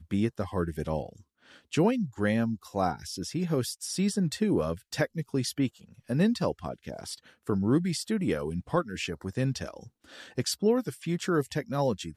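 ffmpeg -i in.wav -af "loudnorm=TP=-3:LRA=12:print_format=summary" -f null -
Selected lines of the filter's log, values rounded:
Input Integrated:    -29.9 LUFS
Input True Peak:     -13.0 dBTP
Input LRA:             1.0 LU
Input Threshold:     -40.3 LUFS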